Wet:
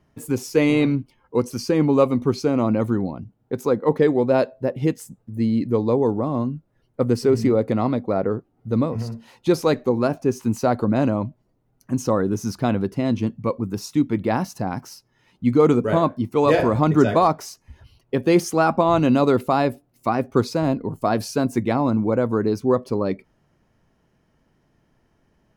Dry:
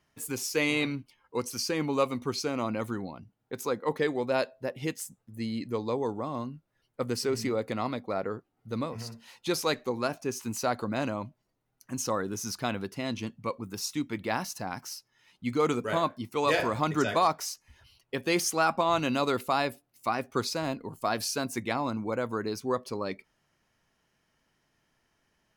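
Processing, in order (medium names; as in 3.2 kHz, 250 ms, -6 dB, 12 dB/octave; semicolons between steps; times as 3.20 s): tilt shelf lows +8 dB; trim +6 dB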